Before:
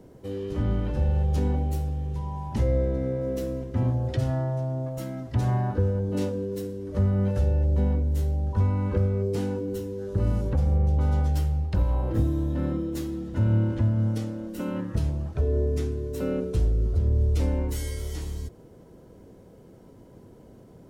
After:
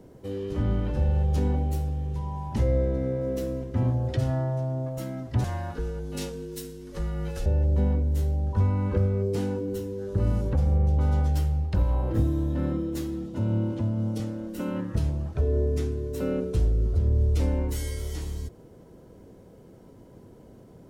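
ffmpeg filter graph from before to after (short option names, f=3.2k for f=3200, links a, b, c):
-filter_complex "[0:a]asettb=1/sr,asplit=3[a][b][c];[a]atrim=end=5.444[d];[b]atrim=start=5.44:end=7.46,asetpts=PTS-STARTPTS,afade=t=in:d=0.004:c=qsin,afade=t=out:st=2.016:d=0.004:c=qsin,tiltshelf=f=1.5k:g=-7.5,afreqshift=-36[e];[c]atrim=start=7.456[f];[d][e]acrossfade=d=0.004:c1=hsin:c2=qsin[g];[g][f]acrossfade=d=0.004:c1=qsin:c2=hsin,asettb=1/sr,asplit=3[h][i][j];[h]atrim=end=13.264[k];[i]atrim=start=13.26:end=14.2,asetpts=PTS-STARTPTS,afade=t=in:d=0.004:c=qsin,afade=t=out:st=0.936:d=0.004:c=qsin,highpass=130,equalizer=f=1.7k:t=o:w=0.7:g=-9.5[l];[j]atrim=start=14.196[m];[k][l]acrossfade=d=0.004:c1=hsin:c2=qsin[n];[n][m]acrossfade=d=0.004:c1=qsin:c2=hsin"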